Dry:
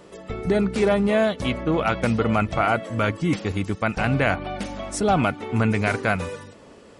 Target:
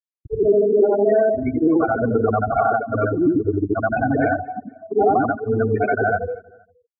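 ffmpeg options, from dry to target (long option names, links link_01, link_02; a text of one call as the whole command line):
ffmpeg -i in.wav -filter_complex "[0:a]afftfilt=real='re':imag='-im':win_size=8192:overlap=0.75,afftfilt=real='re*gte(hypot(re,im),0.112)':imag='im*gte(hypot(re,im),0.112)':win_size=1024:overlap=0.75,agate=range=-33dB:threshold=-39dB:ratio=3:detection=peak,aecho=1:1:2.7:0.8,acompressor=threshold=-26dB:ratio=4,bandpass=frequency=450:width_type=q:width=0.54:csg=0,acontrast=39,asplit=2[link_01][link_02];[link_02]aecho=0:1:235|470:0.0708|0.0234[link_03];[link_01][link_03]amix=inputs=2:normalize=0,volume=7.5dB" out.wav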